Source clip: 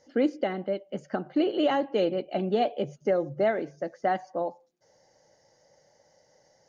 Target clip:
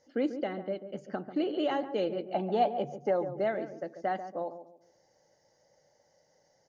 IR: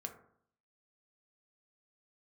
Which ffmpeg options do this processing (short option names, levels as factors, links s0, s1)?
-filter_complex "[0:a]asettb=1/sr,asplit=3[s0][s1][s2];[s0]atrim=end=2.334[s3];[s1]atrim=start=2.33:end=3.32,asetpts=PTS-STARTPTS,afade=t=in:d=0.004:c=qsin,afade=t=out:st=0.986:d=0.004:c=qsin,equalizer=f=870:w=2.5:g=12[s4];[s2]atrim=start=3.316[s5];[s3][s4]acrossfade=d=0.004:c1=hsin:c2=qsin[s6];[s6][s5]acrossfade=d=0.004:c1=qsin:c2=hsin,asplit=2[s7][s8];[s8]adelay=141,lowpass=f=800:p=1,volume=0.355,asplit=2[s9][s10];[s10]adelay=141,lowpass=f=800:p=1,volume=0.36,asplit=2[s11][s12];[s12]adelay=141,lowpass=f=800:p=1,volume=0.36,asplit=2[s13][s14];[s14]adelay=141,lowpass=f=800:p=1,volume=0.36[s15];[s7][s9][s11][s13][s15]amix=inputs=5:normalize=0,volume=0.531"